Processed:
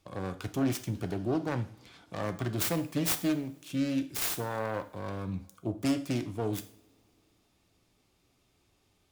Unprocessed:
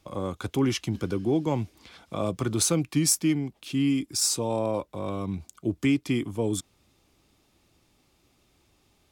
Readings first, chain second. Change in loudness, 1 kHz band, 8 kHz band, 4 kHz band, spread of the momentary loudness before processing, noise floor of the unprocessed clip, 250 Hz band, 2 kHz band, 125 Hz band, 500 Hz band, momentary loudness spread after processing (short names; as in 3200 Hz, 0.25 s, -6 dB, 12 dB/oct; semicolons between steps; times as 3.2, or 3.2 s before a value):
-5.5 dB, -3.0 dB, -11.0 dB, -7.5 dB, 9 LU, -67 dBFS, -5.5 dB, -2.0 dB, -5.0 dB, -6.0 dB, 9 LU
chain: self-modulated delay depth 0.57 ms; two-slope reverb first 0.49 s, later 2.9 s, from -26 dB, DRR 8 dB; gain -5.5 dB